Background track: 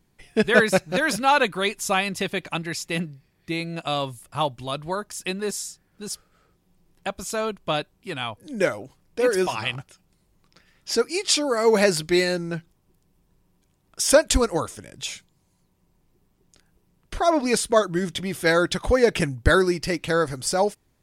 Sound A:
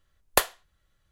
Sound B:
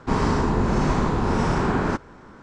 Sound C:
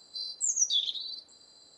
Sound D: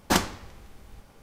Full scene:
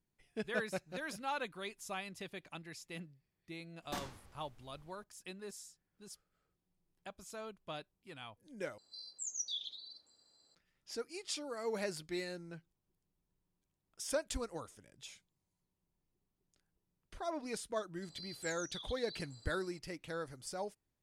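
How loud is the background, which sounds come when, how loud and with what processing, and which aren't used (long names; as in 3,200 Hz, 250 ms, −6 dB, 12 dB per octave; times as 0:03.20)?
background track −20 dB
0:03.82: mix in D −16 dB + brickwall limiter −14 dBFS
0:08.78: overwrite with C −13 dB
0:18.02: mix in C −5 dB + downward compressor, threshold −41 dBFS
not used: A, B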